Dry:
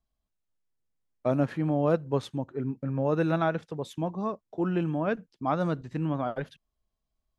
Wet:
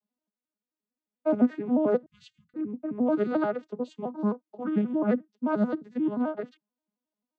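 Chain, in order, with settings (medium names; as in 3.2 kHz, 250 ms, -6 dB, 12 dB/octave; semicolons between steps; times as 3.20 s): vocoder on a broken chord minor triad, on G#3, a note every 88 ms; 2.06–2.54 s: inverse Chebyshev band-stop 280–840 Hz, stop band 60 dB; trim +2 dB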